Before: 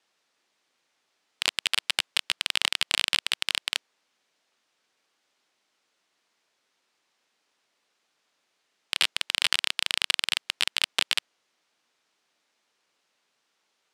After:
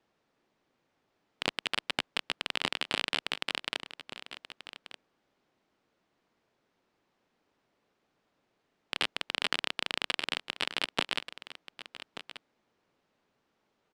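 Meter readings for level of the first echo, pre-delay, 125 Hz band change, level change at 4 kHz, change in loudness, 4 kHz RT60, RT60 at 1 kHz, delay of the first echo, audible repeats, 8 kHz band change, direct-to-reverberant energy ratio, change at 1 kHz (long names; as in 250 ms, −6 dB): −13.5 dB, no reverb audible, can't be measured, −7.5 dB, −7.0 dB, no reverb audible, no reverb audible, 1,183 ms, 1, −13.0 dB, no reverb audible, 0.0 dB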